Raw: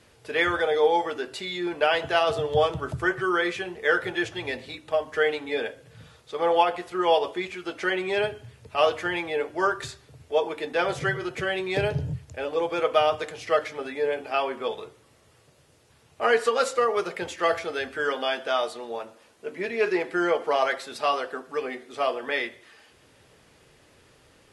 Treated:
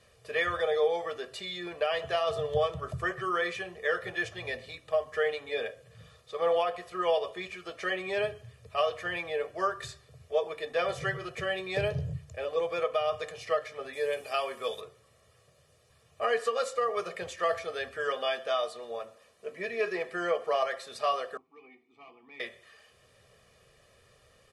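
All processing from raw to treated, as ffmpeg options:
ffmpeg -i in.wav -filter_complex "[0:a]asettb=1/sr,asplit=3[link_01][link_02][link_03];[link_01]atrim=end=13.934[link_04];[link_02]atrim=start=13.93:end=14.81,asetpts=PTS-STARTPTS,afade=type=in:duration=0.004:curve=qsin,afade=type=out:start_time=0.876:duration=0.004:curve=qsin,aemphasis=mode=production:type=75fm,bandreject=frequency=730:width=21[link_05];[link_03]atrim=start=14.806[link_06];[link_04][link_05]acrossfade=duration=0.004:curve1=hsin:curve2=qsin[link_07];[link_07][link_06]acrossfade=duration=0.004:curve1=qsin:curve2=hsin,asettb=1/sr,asplit=3[link_08][link_09][link_10];[link_08]atrim=end=21.374[link_11];[link_09]atrim=start=21.37:end=22.4,asetpts=PTS-STARTPTS,afade=type=in:duration=0.004:curve=qsin,afade=type=out:start_time=1.026:duration=0.004:curve=qsin,asubboost=boost=11.5:cutoff=220,asoftclip=type=hard:threshold=-23.5dB,asplit=3[link_12][link_13][link_14];[link_12]bandpass=frequency=300:width_type=q:width=8,volume=0dB[link_15];[link_13]bandpass=frequency=870:width_type=q:width=8,volume=-6dB[link_16];[link_14]bandpass=frequency=2240:width_type=q:width=8,volume=-9dB[link_17];[link_15][link_16][link_17]amix=inputs=3:normalize=0[link_18];[link_10]atrim=start=22.396[link_19];[link_11][link_18]acrossfade=duration=0.004:curve1=hsin:curve2=qsin[link_20];[link_20][link_19]acrossfade=duration=0.004:curve1=qsin:curve2=hsin,bandreject=frequency=50:width_type=h:width=6,bandreject=frequency=100:width_type=h:width=6,bandreject=frequency=150:width_type=h:width=6,aecho=1:1:1.7:0.72,alimiter=limit=-11dB:level=0:latency=1:release=305,volume=-6.5dB" out.wav

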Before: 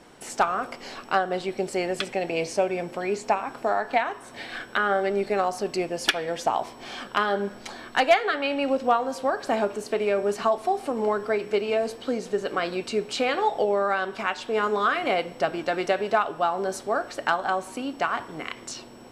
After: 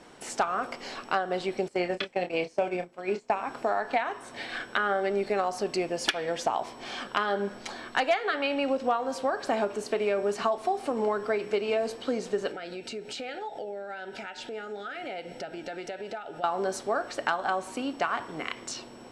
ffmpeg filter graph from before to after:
ffmpeg -i in.wav -filter_complex "[0:a]asettb=1/sr,asplit=3[link_01][link_02][link_03];[link_01]atrim=end=1.684[link_04];[link_02]atrim=start=1.68:end=3.3,asetpts=PTS-STARTPTS,afade=type=in:duration=0.004:curve=qsin,afade=type=out:start_time=1.616:duration=0.004:curve=qsin,agate=range=-20dB:threshold=-29dB:ratio=16:release=100:detection=peak,acrossover=split=5200[link_05][link_06];[link_06]acompressor=threshold=-58dB:ratio=4:attack=1:release=60[link_07];[link_05][link_07]amix=inputs=2:normalize=0,asplit=2[link_08][link_09];[link_09]adelay=28,volume=-8dB[link_10];[link_08][link_10]amix=inputs=2:normalize=0,atrim=end_sample=71442[link_11];[link_03]atrim=start=3.296[link_12];[link_04][link_11]acrossfade=duration=0.004:curve1=hsin:curve2=qsin[link_13];[link_13][link_12]acrossfade=duration=0.004:curve1=qsin:curve2=hsin,asettb=1/sr,asplit=3[link_14][link_15][link_16];[link_14]atrim=end=12.514[link_17];[link_15]atrim=start=12.51:end=16.44,asetpts=PTS-STARTPTS,afade=type=in:duration=0.004:curve=qsin,afade=type=out:start_time=3.926:duration=0.004:curve=qsin,acompressor=threshold=-35dB:ratio=4:attack=3.2:release=140:knee=1:detection=peak,asuperstop=centerf=1100:order=12:qfactor=3.8[link_18];[link_16]atrim=start=16.436[link_19];[link_17][link_18]acrossfade=duration=0.004:curve1=hsin:curve2=qsin[link_20];[link_20][link_19]acrossfade=duration=0.004:curve1=qsin:curve2=hsin,lowpass=9800,lowshelf=frequency=160:gain=-4,acompressor=threshold=-24dB:ratio=2.5" out.wav

